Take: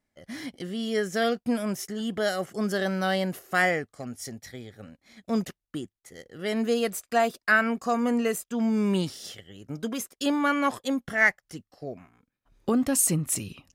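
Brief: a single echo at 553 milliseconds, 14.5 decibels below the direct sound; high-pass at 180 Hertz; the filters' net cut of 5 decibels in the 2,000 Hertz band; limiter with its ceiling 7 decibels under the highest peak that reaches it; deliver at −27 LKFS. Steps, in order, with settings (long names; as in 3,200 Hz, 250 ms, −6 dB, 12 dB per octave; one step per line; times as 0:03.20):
high-pass filter 180 Hz
parametric band 2,000 Hz −6.5 dB
brickwall limiter −18.5 dBFS
single-tap delay 553 ms −14.5 dB
level +3.5 dB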